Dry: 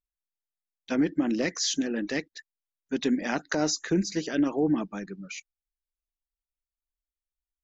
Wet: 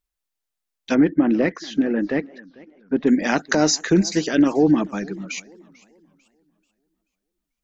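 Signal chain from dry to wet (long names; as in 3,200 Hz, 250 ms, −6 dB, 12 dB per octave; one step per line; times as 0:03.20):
0:00.94–0:03.06: low-pass filter 2,200 Hz → 1,100 Hz 12 dB per octave
feedback echo with a swinging delay time 440 ms, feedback 35%, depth 198 cents, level −23 dB
level +8.5 dB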